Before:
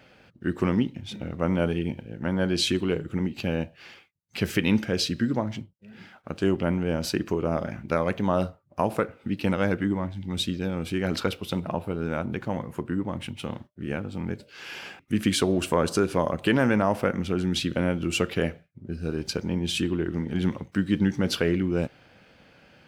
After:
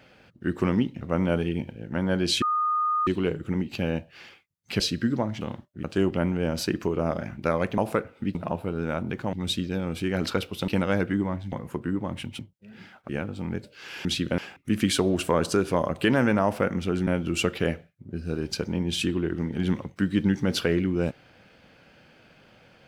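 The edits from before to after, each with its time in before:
0:01.01–0:01.31: remove
0:02.72: insert tone 1,230 Hz −21.5 dBFS 0.65 s
0:04.45–0:04.98: remove
0:05.59–0:06.29: swap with 0:13.43–0:13.85
0:08.24–0:08.82: remove
0:09.39–0:10.23: swap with 0:11.58–0:12.56
0:17.50–0:17.83: move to 0:14.81

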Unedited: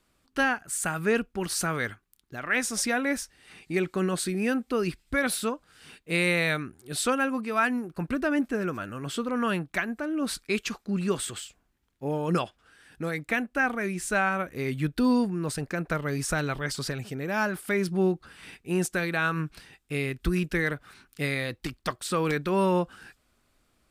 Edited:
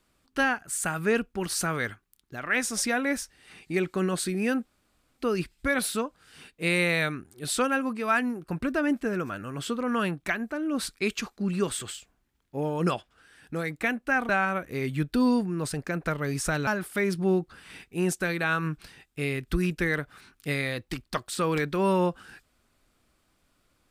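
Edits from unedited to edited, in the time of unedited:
0:04.65: splice in room tone 0.52 s
0:13.77–0:14.13: remove
0:16.51–0:17.40: remove

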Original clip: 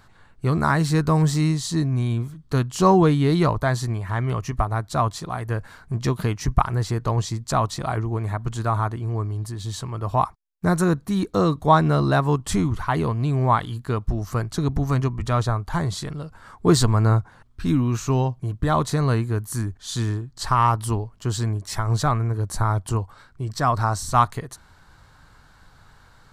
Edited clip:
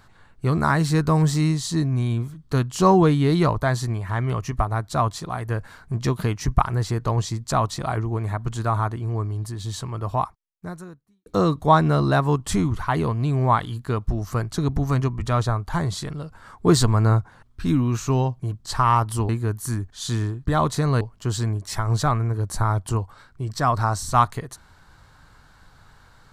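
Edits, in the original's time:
0:10.00–0:11.26: fade out quadratic
0:18.61–0:19.16: swap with 0:20.33–0:21.01

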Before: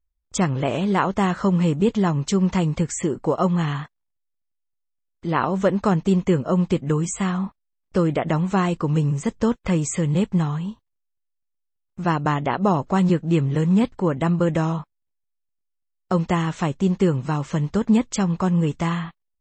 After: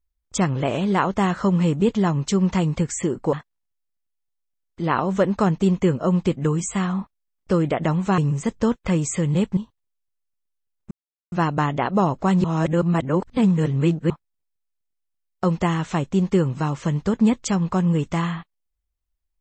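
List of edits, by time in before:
0:03.33–0:03.78: remove
0:08.63–0:08.98: remove
0:10.37–0:10.66: remove
0:12.00: splice in silence 0.41 s
0:13.12–0:14.78: reverse

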